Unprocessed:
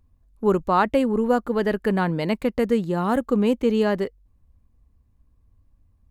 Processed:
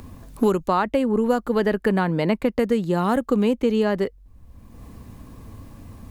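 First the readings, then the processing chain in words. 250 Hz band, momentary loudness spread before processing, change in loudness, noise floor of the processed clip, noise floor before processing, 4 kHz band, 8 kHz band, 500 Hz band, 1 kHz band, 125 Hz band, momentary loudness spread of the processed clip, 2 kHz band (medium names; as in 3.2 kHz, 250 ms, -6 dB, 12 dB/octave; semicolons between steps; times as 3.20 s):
+1.0 dB, 4 LU, +0.5 dB, -51 dBFS, -62 dBFS, +1.0 dB, no reading, +0.5 dB, -0.5 dB, +1.5 dB, 2 LU, 0.0 dB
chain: three bands compressed up and down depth 100%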